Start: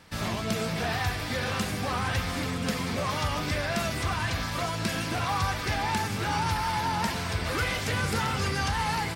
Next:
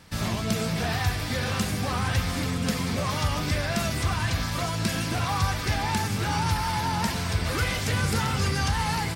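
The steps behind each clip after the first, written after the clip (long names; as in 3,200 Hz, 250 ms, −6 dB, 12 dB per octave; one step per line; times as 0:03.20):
bass and treble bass +5 dB, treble +4 dB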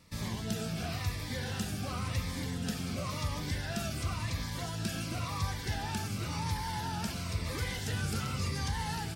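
phaser whose notches keep moving one way falling 0.95 Hz
level −8 dB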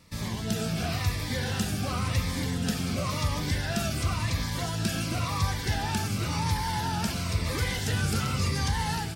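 automatic gain control gain up to 3 dB
level +3.5 dB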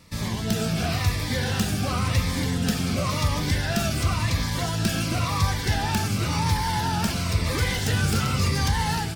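stylus tracing distortion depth 0.051 ms
level +4.5 dB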